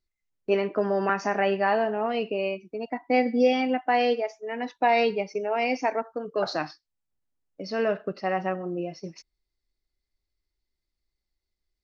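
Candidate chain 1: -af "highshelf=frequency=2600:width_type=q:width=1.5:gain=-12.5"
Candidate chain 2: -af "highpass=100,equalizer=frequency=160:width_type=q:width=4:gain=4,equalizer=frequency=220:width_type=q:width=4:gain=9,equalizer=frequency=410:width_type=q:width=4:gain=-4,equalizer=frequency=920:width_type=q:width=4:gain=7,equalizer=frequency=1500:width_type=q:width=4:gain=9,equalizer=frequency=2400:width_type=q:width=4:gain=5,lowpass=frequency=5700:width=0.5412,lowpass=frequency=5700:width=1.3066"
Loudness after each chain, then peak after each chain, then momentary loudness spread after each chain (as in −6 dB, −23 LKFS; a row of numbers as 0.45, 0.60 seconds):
−26.0, −24.0 LKFS; −10.0, −7.0 dBFS; 11, 12 LU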